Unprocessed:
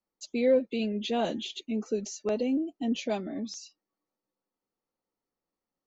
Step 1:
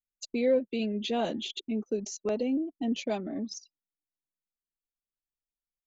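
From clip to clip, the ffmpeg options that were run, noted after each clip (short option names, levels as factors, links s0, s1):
-filter_complex "[0:a]anlmdn=0.251,asplit=2[s0][s1];[s1]acompressor=threshold=0.0126:ratio=6,volume=1.06[s2];[s0][s2]amix=inputs=2:normalize=0,volume=0.708"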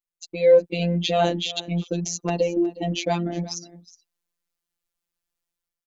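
-af "dynaudnorm=f=120:g=7:m=3.35,aecho=1:1:364:0.119,afftfilt=real='hypot(re,im)*cos(PI*b)':imag='0':win_size=1024:overlap=0.75,volume=1.33"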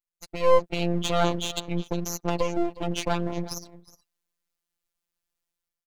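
-af "aeval=exprs='max(val(0),0)':c=same"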